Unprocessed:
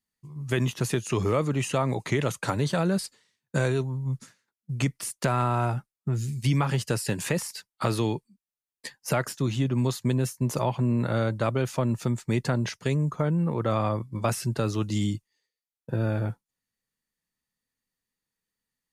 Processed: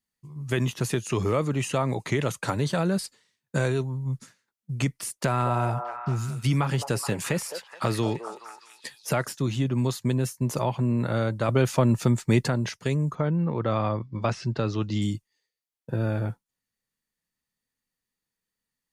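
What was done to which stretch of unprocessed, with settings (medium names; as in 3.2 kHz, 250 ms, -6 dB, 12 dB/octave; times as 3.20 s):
4.90–9.31 s: repeats whose band climbs or falls 212 ms, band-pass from 630 Hz, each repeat 0.7 oct, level -5 dB
11.49–12.48 s: gain +5 dB
13.15–15.02 s: low-pass 5.4 kHz 24 dB/octave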